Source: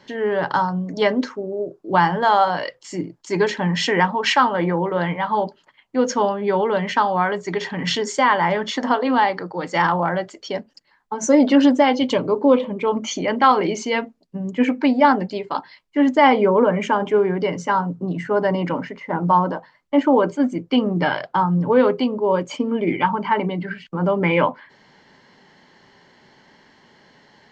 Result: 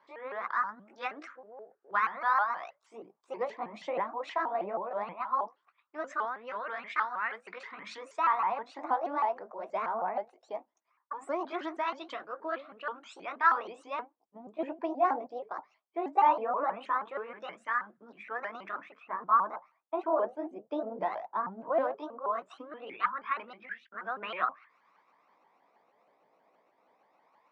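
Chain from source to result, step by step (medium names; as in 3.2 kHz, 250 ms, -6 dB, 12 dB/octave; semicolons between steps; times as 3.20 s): sawtooth pitch modulation +5.5 st, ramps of 159 ms; LFO band-pass sine 0.18 Hz 690–1600 Hz; trim -6 dB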